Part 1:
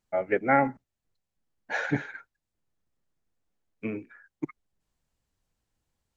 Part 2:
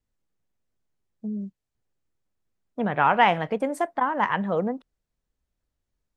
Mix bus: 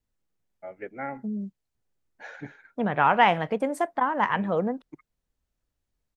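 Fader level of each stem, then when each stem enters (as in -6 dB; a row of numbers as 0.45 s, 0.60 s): -12.5 dB, -0.5 dB; 0.50 s, 0.00 s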